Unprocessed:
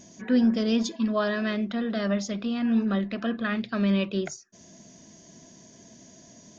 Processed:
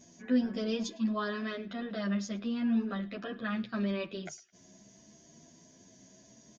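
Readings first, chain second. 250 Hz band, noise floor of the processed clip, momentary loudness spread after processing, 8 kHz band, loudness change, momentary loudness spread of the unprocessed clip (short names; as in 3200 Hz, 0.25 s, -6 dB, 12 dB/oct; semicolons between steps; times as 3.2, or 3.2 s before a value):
-7.5 dB, -60 dBFS, 9 LU, n/a, -7.0 dB, 7 LU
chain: on a send: narrowing echo 0.107 s, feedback 47%, band-pass 2300 Hz, level -19.5 dB; on the sum: endless flanger 9.8 ms +0.74 Hz; gain -4 dB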